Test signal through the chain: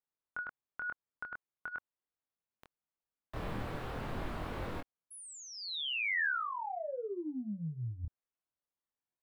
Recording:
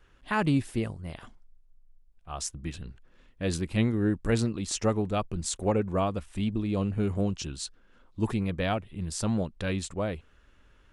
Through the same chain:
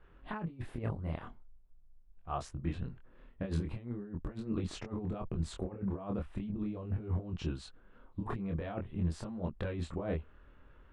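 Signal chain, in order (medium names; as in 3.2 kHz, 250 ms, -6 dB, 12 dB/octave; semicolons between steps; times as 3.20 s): FFT filter 1.1 kHz 0 dB, 3.9 kHz -12 dB, 5.9 kHz -22 dB; compressor with a negative ratio -32 dBFS, ratio -0.5; chorus 0.43 Hz, depth 3.3 ms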